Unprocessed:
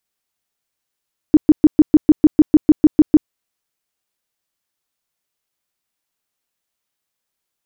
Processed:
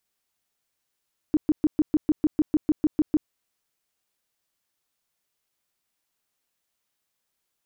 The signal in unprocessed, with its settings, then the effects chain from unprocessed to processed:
tone bursts 305 Hz, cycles 9, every 0.15 s, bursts 13, -3.5 dBFS
peak limiter -15.5 dBFS

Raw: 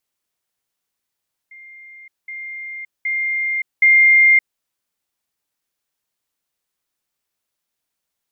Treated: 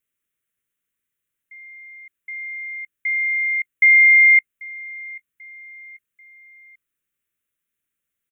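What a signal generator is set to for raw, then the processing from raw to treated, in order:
level ladder 2.11 kHz -38 dBFS, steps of 10 dB, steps 4, 0.57 s 0.20 s
static phaser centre 2 kHz, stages 4; feedback delay 789 ms, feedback 46%, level -23 dB

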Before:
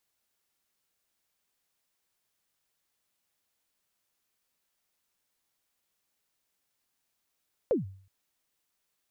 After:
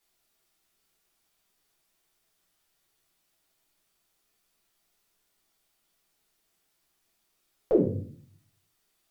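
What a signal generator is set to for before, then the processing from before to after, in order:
kick drum length 0.37 s, from 570 Hz, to 96 Hz, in 141 ms, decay 0.51 s, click off, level -19.5 dB
vibrato 3.2 Hz 5.1 cents; simulated room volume 47 m³, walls mixed, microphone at 1.1 m

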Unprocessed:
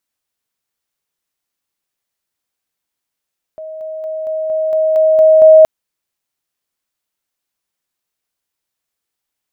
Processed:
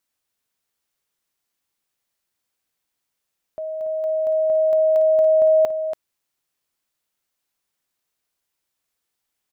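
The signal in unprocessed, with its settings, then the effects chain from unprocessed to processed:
level ladder 631 Hz -25.5 dBFS, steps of 3 dB, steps 9, 0.23 s 0.00 s
compression 4:1, threshold -17 dBFS; on a send: delay 284 ms -9 dB

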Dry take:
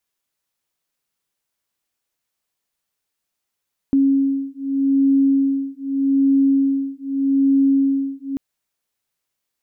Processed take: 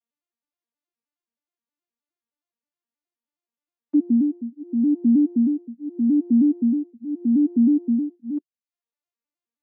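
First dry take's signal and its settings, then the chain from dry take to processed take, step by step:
beating tones 273 Hz, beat 0.82 Hz, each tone -17.5 dBFS 4.44 s
vocoder on a broken chord major triad, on A#3, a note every 105 ms; reverb removal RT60 0.62 s

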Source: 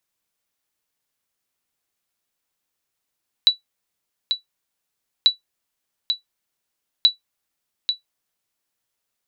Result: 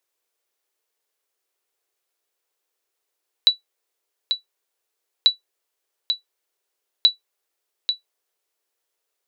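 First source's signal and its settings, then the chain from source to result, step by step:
sonar ping 3.94 kHz, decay 0.13 s, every 1.79 s, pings 3, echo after 0.84 s, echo -7.5 dB -4.5 dBFS
resonant low shelf 290 Hz -11 dB, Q 3

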